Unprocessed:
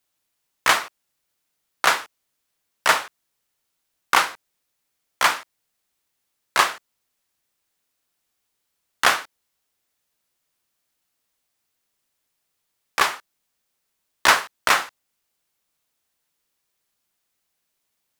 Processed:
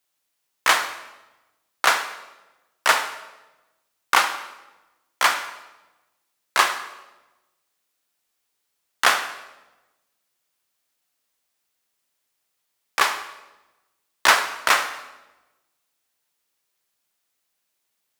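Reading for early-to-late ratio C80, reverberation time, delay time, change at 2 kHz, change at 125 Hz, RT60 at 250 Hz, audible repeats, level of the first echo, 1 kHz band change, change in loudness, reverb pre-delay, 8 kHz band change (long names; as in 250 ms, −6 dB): 12.0 dB, 1.1 s, no echo audible, +0.5 dB, can't be measured, 1.3 s, no echo audible, no echo audible, 0.0 dB, −0.5 dB, 34 ms, +0.5 dB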